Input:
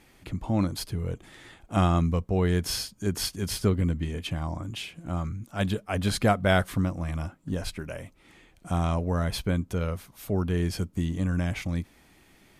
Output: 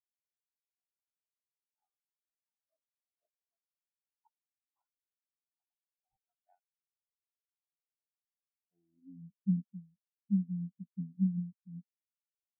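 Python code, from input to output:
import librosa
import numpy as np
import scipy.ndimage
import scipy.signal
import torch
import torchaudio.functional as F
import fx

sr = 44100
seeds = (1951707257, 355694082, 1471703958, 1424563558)

y = fx.filter_sweep_bandpass(x, sr, from_hz=3000.0, to_hz=210.0, start_s=7.4, end_s=9.23, q=3.7)
y = fx.sample_hold(y, sr, seeds[0], rate_hz=4000.0, jitter_pct=0)
y = fx.spectral_expand(y, sr, expansion=4.0)
y = F.gain(torch.from_numpy(y), 1.5).numpy()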